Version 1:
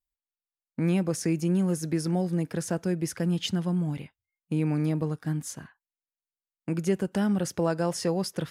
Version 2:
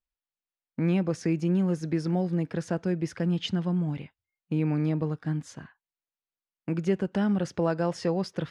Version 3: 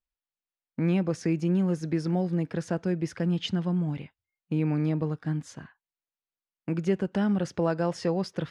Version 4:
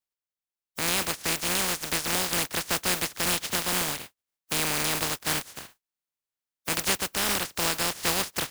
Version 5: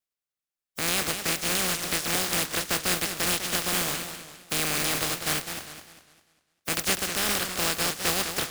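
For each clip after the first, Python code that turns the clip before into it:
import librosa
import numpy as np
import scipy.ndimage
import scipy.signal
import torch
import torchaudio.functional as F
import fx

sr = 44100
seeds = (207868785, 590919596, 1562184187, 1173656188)

y1 = scipy.signal.sosfilt(scipy.signal.butter(2, 4100.0, 'lowpass', fs=sr, output='sos'), x)
y2 = y1
y3 = fx.spec_flatten(y2, sr, power=0.17)
y3 = fx.rider(y3, sr, range_db=10, speed_s=0.5)
y4 = fx.notch(y3, sr, hz=940.0, q=8.8)
y4 = fx.echo_warbled(y4, sr, ms=200, feedback_pct=40, rate_hz=2.8, cents=188, wet_db=-8)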